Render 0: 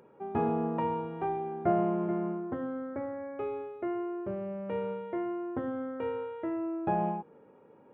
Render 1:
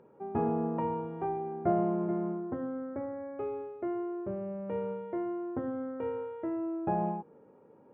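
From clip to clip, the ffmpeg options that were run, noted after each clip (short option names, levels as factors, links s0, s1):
-af "lowpass=f=1100:p=1"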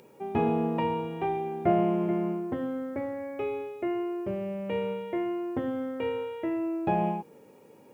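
-af "aexciter=amount=6.1:drive=6.8:freq=2100,volume=1.58"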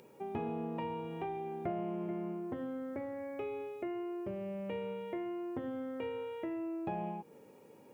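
-af "acompressor=threshold=0.0178:ratio=2.5,volume=0.668"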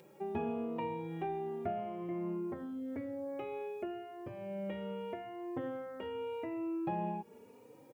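-filter_complex "[0:a]asplit=2[s0][s1];[s1]adelay=3.3,afreqshift=0.87[s2];[s0][s2]amix=inputs=2:normalize=1,volume=1.41"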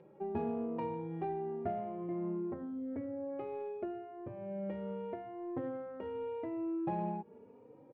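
-af "adynamicsmooth=sensitivity=1.5:basefreq=1400,volume=1.12"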